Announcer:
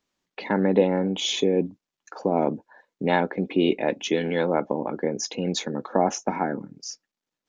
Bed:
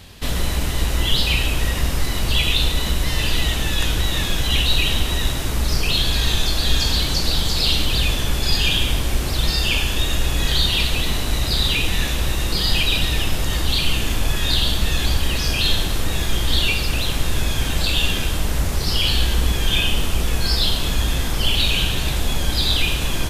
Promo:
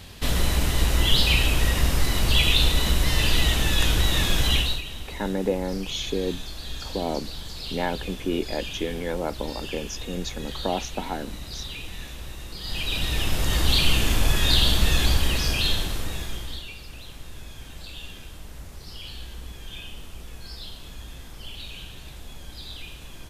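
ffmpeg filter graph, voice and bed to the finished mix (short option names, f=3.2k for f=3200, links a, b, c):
-filter_complex "[0:a]adelay=4700,volume=-5.5dB[a];[1:a]volume=15dB,afade=t=out:st=4.47:d=0.35:silence=0.16788,afade=t=in:st=12.6:d=1.08:silence=0.158489,afade=t=out:st=14.93:d=1.71:silence=0.105925[b];[a][b]amix=inputs=2:normalize=0"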